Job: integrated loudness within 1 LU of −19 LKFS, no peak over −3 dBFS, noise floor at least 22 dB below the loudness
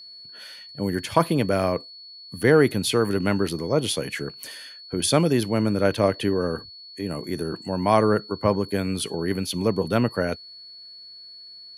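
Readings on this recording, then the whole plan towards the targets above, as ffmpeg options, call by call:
interfering tone 4,400 Hz; level of the tone −41 dBFS; integrated loudness −23.5 LKFS; sample peak −2.5 dBFS; target loudness −19.0 LKFS
→ -af "bandreject=frequency=4400:width=30"
-af "volume=4.5dB,alimiter=limit=-3dB:level=0:latency=1"

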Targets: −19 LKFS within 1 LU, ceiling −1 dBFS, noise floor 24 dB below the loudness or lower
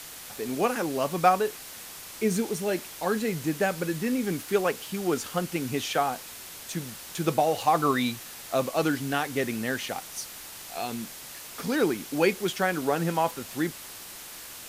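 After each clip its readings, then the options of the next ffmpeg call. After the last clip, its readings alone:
background noise floor −43 dBFS; target noise floor −52 dBFS; integrated loudness −28.0 LKFS; sample peak −7.0 dBFS; target loudness −19.0 LKFS
→ -af "afftdn=noise_reduction=9:noise_floor=-43"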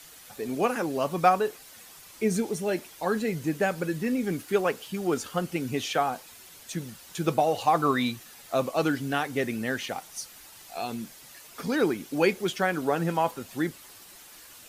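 background noise floor −50 dBFS; target noise floor −52 dBFS
→ -af "afftdn=noise_reduction=6:noise_floor=-50"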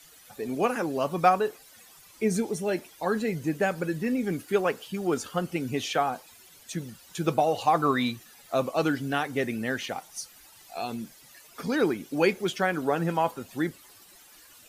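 background noise floor −54 dBFS; integrated loudness −28.0 LKFS; sample peak −7.0 dBFS; target loudness −19.0 LKFS
→ -af "volume=9dB,alimiter=limit=-1dB:level=0:latency=1"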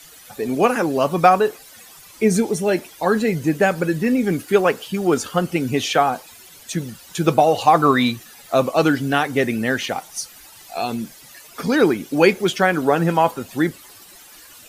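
integrated loudness −19.0 LKFS; sample peak −1.0 dBFS; background noise floor −45 dBFS

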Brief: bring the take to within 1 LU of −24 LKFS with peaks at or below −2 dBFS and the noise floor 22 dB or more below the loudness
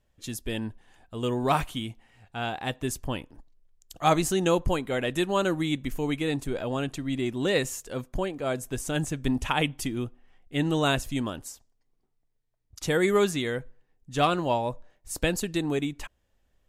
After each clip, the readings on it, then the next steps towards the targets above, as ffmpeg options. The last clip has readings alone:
integrated loudness −28.5 LKFS; sample peak −10.5 dBFS; target loudness −24.0 LKFS
→ -af "volume=4.5dB"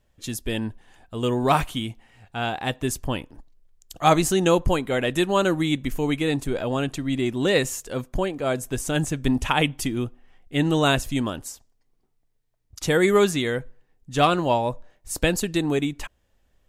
integrated loudness −24.0 LKFS; sample peak −6.0 dBFS; background noise floor −68 dBFS

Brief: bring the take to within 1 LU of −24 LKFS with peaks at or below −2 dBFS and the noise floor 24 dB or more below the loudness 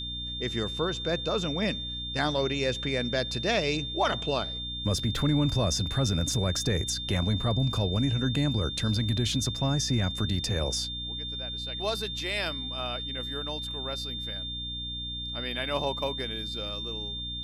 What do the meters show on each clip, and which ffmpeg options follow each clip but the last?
mains hum 60 Hz; hum harmonics up to 300 Hz; level of the hum −39 dBFS; interfering tone 3,600 Hz; level of the tone −34 dBFS; integrated loudness −29.0 LKFS; sample peak −14.5 dBFS; target loudness −24.0 LKFS
→ -af "bandreject=frequency=60:width_type=h:width=4,bandreject=frequency=120:width_type=h:width=4,bandreject=frequency=180:width_type=h:width=4,bandreject=frequency=240:width_type=h:width=4,bandreject=frequency=300:width_type=h:width=4"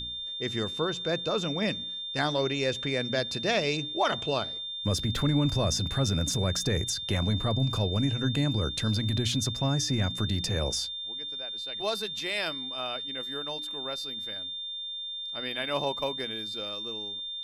mains hum none found; interfering tone 3,600 Hz; level of the tone −34 dBFS
→ -af "bandreject=frequency=3600:width=30"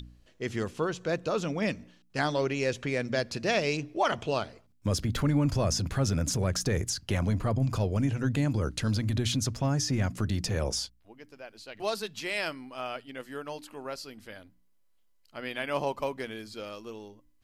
interfering tone none found; integrated loudness −30.5 LKFS; sample peak −15.0 dBFS; target loudness −24.0 LKFS
→ -af "volume=6.5dB"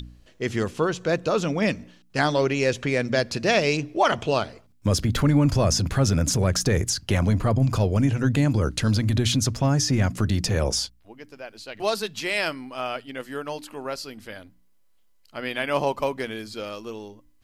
integrated loudness −24.0 LKFS; sample peak −8.5 dBFS; background noise floor −58 dBFS

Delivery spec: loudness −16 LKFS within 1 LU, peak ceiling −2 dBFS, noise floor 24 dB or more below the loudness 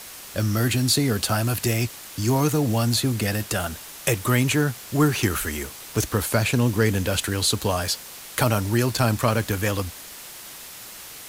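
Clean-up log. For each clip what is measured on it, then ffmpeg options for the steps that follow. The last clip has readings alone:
background noise floor −40 dBFS; target noise floor −47 dBFS; integrated loudness −23.0 LKFS; sample peak −7.0 dBFS; target loudness −16.0 LKFS
→ -af "afftdn=noise_reduction=7:noise_floor=-40"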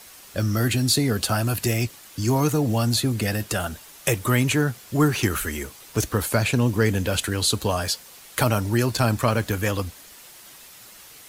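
background noise floor −46 dBFS; target noise floor −47 dBFS
→ -af "afftdn=noise_reduction=6:noise_floor=-46"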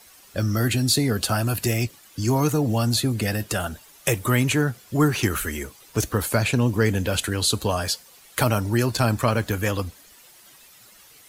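background noise floor −51 dBFS; integrated loudness −23.5 LKFS; sample peak −7.0 dBFS; target loudness −16.0 LKFS
→ -af "volume=7.5dB,alimiter=limit=-2dB:level=0:latency=1"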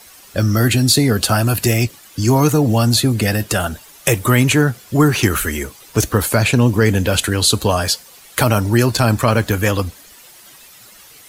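integrated loudness −16.0 LKFS; sample peak −2.0 dBFS; background noise floor −44 dBFS

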